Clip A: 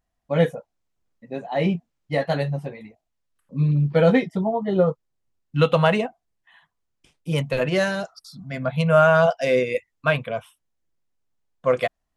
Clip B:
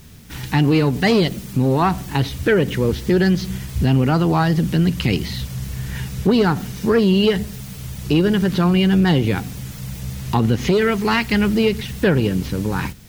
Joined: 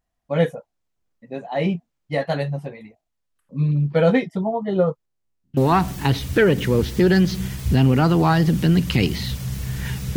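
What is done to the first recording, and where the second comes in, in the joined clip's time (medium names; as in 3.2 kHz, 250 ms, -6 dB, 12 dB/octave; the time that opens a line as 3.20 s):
clip A
5.05–5.57 s: spectrogram pixelated in time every 100 ms
5.57 s: go over to clip B from 1.67 s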